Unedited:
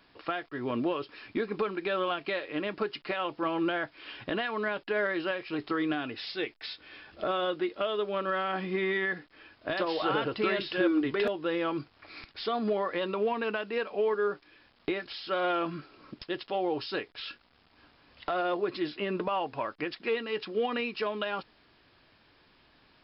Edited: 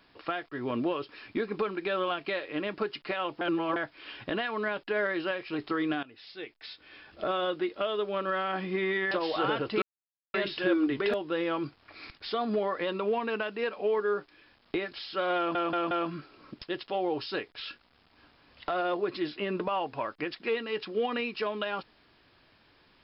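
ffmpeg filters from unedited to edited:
ffmpeg -i in.wav -filter_complex "[0:a]asplit=9[link_01][link_02][link_03][link_04][link_05][link_06][link_07][link_08][link_09];[link_01]atrim=end=3.412[link_10];[link_02]atrim=start=3.408:end=3.762,asetpts=PTS-STARTPTS,areverse[link_11];[link_03]atrim=start=3.758:end=6.03,asetpts=PTS-STARTPTS,afade=type=out:start_time=2.268:duration=0.004:curve=hsin:silence=0.133352[link_12];[link_04]atrim=start=6.03:end=9.112,asetpts=PTS-STARTPTS,afade=type=in:duration=1.25:silence=0.133352[link_13];[link_05]atrim=start=9.768:end=10.48,asetpts=PTS-STARTPTS,afade=type=out:start_time=0.708:duration=0.004:curve=hsin,apad=pad_dur=0.52[link_14];[link_06]atrim=start=10.48:end=15.692,asetpts=PTS-STARTPTS,afade=type=in:duration=0.004:curve=hsin[link_15];[link_07]atrim=start=15.508:end=15.692[link_16];[link_08]atrim=start=15.508:end=15.692[link_17];[link_09]atrim=start=15.508[link_18];[link_10][link_11]acrossfade=duration=0.004:curve1=hsin:curve2=hsin[link_19];[link_12][link_13]concat=n=2:v=0:a=1[link_20];[link_19][link_20]acrossfade=duration=0.004:curve1=hsin:curve2=hsin[link_21];[link_14][link_15]concat=n=2:v=0:a=1[link_22];[link_21][link_22]acrossfade=duration=0.004:curve1=hsin:curve2=hsin[link_23];[link_23][link_16]acrossfade=duration=0.004:curve1=hsin:curve2=hsin[link_24];[link_24][link_17]acrossfade=duration=0.004:curve1=hsin:curve2=hsin[link_25];[link_25][link_18]acrossfade=duration=0.004:curve1=hsin:curve2=hsin" out.wav

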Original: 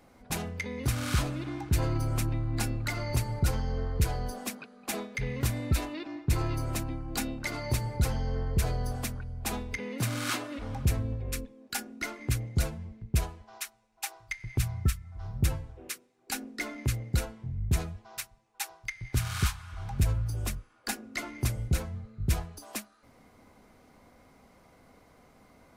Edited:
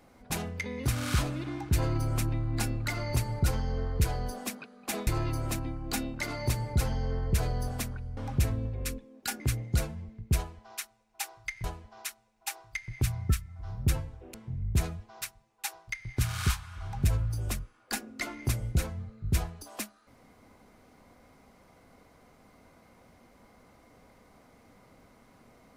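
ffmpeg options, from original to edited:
ffmpeg -i in.wav -filter_complex "[0:a]asplit=6[link_01][link_02][link_03][link_04][link_05][link_06];[link_01]atrim=end=5.072[link_07];[link_02]atrim=start=6.308:end=9.412[link_08];[link_03]atrim=start=10.638:end=11.872[link_09];[link_04]atrim=start=12.228:end=14.472[link_10];[link_05]atrim=start=13.198:end=15.902[link_11];[link_06]atrim=start=17.298[link_12];[link_07][link_08]acrossfade=duration=0.004:curve1=hsin:curve2=hsin[link_13];[link_13][link_09]acrossfade=duration=0.004:curve1=hsin:curve2=hsin[link_14];[link_14][link_10]acrossfade=duration=0.004:curve1=hsin:curve2=hsin[link_15];[link_15][link_11]acrossfade=duration=0.004:curve1=hsin:curve2=hsin[link_16];[link_16][link_12]acrossfade=duration=0.004:curve1=hsin:curve2=hsin" out.wav

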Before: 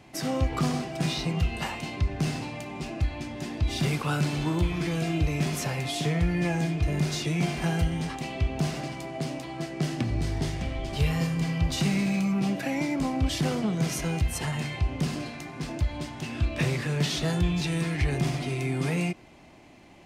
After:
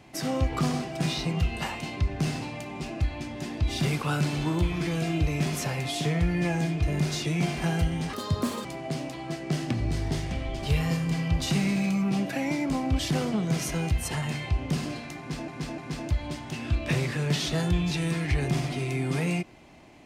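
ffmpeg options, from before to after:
ffmpeg -i in.wav -filter_complex "[0:a]asplit=5[link_01][link_02][link_03][link_04][link_05];[link_01]atrim=end=8.134[link_06];[link_02]atrim=start=8.13:end=8.95,asetpts=PTS-STARTPTS,asetrate=69678,aresample=44100,atrim=end_sample=22887,asetpts=PTS-STARTPTS[link_07];[link_03]atrim=start=8.946:end=15.782[link_08];[link_04]atrim=start=15.478:end=15.782[link_09];[link_05]atrim=start=15.478[link_10];[link_06][link_07]acrossfade=duration=0.004:curve1=hsin:curve2=hsin[link_11];[link_11][link_08]acrossfade=duration=0.004:curve1=hsin:curve2=hsin[link_12];[link_12][link_09]acrossfade=duration=0.004:curve1=hsin:curve2=hsin[link_13];[link_13][link_10]acrossfade=duration=0.004:curve1=hsin:curve2=hsin" out.wav

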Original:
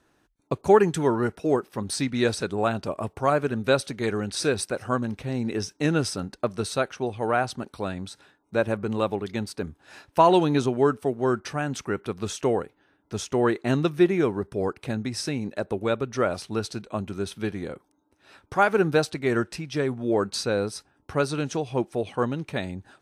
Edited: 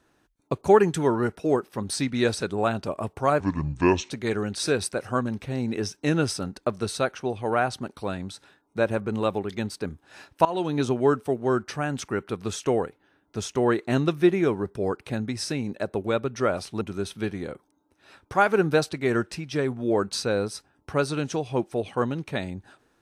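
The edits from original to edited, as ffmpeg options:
ffmpeg -i in.wav -filter_complex "[0:a]asplit=5[link_01][link_02][link_03][link_04][link_05];[link_01]atrim=end=3.404[link_06];[link_02]atrim=start=3.4:end=3.87,asetpts=PTS-STARTPTS,asetrate=29547,aresample=44100[link_07];[link_03]atrim=start=3.866:end=10.22,asetpts=PTS-STARTPTS,afade=type=out:start_time=6.35:duration=0.004:curve=hsin:silence=0.125893[link_08];[link_04]atrim=start=10.22:end=16.582,asetpts=PTS-STARTPTS,afade=type=in:duration=0.47:silence=0.125893[link_09];[link_05]atrim=start=17.018[link_10];[link_06][link_07]acrossfade=duration=0.004:curve1=hsin:curve2=hsin[link_11];[link_08][link_09]concat=n=2:v=0:a=1[link_12];[link_11][link_12]acrossfade=duration=0.004:curve1=hsin:curve2=hsin[link_13];[link_13][link_10]acrossfade=duration=0.004:curve1=hsin:curve2=hsin" out.wav

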